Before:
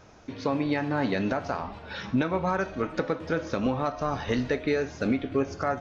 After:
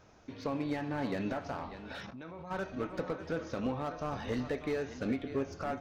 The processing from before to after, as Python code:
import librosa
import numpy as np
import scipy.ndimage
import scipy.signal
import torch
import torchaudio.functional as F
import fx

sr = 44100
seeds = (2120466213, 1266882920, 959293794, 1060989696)

p1 = x + fx.echo_single(x, sr, ms=593, db=-13.5, dry=0)
p2 = fx.level_steps(p1, sr, step_db=19, at=(2.05, 2.5), fade=0.02)
p3 = fx.slew_limit(p2, sr, full_power_hz=58.0)
y = p3 * 10.0 ** (-7.5 / 20.0)